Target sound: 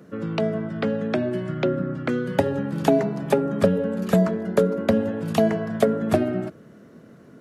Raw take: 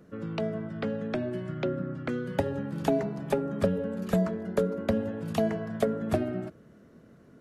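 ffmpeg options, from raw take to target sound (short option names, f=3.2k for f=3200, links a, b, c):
-af "highpass=110,volume=7.5dB"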